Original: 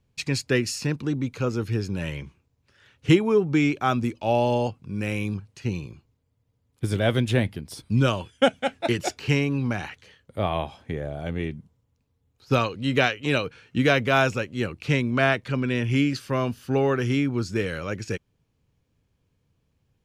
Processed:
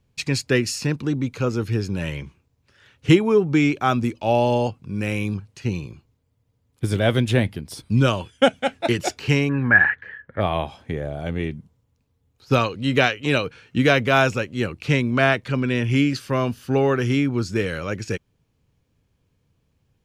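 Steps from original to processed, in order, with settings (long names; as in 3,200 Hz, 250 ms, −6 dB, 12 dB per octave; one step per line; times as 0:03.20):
0:09.49–0:10.41: low-pass with resonance 1,700 Hz, resonance Q 15
level +3 dB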